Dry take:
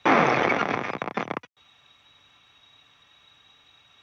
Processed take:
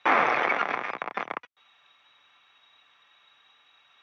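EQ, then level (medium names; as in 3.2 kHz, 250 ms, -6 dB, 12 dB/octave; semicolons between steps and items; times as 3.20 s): band-pass filter 1.5 kHz, Q 0.66; 0.0 dB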